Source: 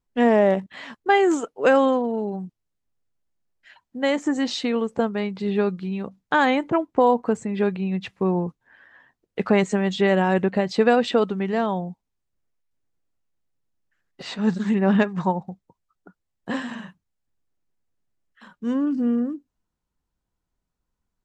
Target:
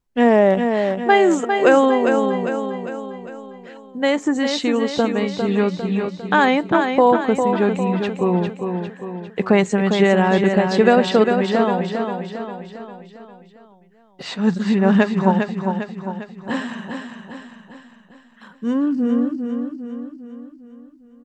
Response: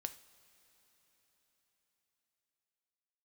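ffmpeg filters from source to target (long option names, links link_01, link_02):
-af "aecho=1:1:402|804|1206|1608|2010|2412:0.501|0.256|0.13|0.0665|0.0339|0.0173,volume=3.5dB"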